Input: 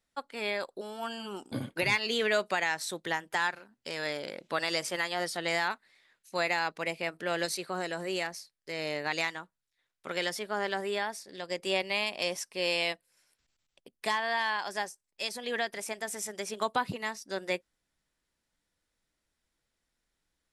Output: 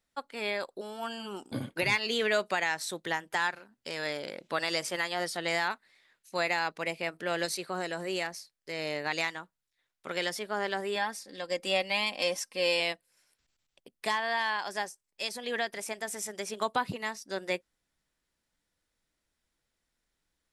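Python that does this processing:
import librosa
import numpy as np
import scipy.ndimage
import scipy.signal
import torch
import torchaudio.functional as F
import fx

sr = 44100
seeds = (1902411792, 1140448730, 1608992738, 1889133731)

y = fx.comb(x, sr, ms=3.8, depth=0.58, at=(10.95, 12.8))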